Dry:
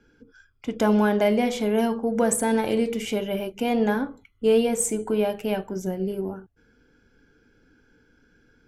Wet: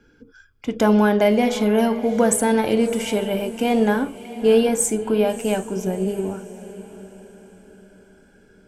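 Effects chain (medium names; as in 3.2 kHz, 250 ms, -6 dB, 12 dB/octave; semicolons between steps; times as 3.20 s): echo that smears into a reverb 666 ms, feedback 41%, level -14.5 dB; trim +4 dB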